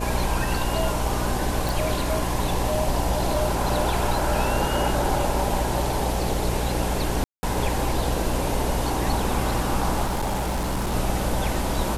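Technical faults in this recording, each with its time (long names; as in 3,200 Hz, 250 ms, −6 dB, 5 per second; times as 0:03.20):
mains buzz 60 Hz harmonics 11 −28 dBFS
0:01.69: click
0:07.24–0:07.43: drop-out 190 ms
0:10.04–0:10.95: clipping −21.5 dBFS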